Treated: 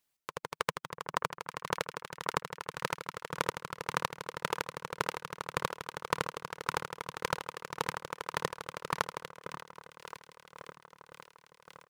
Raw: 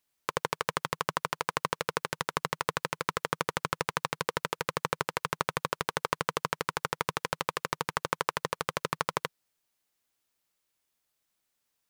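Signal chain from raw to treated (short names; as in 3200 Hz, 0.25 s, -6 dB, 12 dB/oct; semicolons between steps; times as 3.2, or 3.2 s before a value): reverb removal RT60 0.74 s; echo with dull and thin repeats by turns 0.614 s, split 1900 Hz, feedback 72%, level -9.5 dB; chopper 1.8 Hz, depth 65%, duty 30%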